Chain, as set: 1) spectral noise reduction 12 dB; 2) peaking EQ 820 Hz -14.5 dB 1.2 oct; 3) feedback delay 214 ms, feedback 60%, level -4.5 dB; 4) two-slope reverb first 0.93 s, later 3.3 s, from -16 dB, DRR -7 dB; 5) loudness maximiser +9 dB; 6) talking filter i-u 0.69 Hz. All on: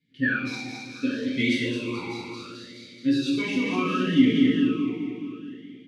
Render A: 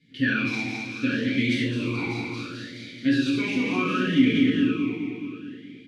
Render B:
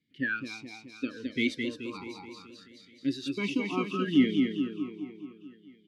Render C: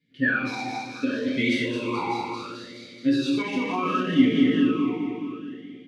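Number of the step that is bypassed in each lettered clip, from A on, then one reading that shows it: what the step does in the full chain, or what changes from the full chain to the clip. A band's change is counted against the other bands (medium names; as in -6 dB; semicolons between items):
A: 1, 125 Hz band +3.0 dB; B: 4, momentary loudness spread change +2 LU; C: 2, 1 kHz band +6.5 dB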